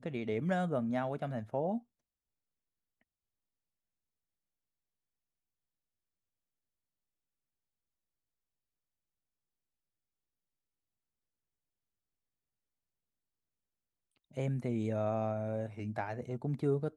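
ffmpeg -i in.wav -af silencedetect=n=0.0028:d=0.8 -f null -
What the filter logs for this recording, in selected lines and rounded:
silence_start: 1.80
silence_end: 14.31 | silence_duration: 12.52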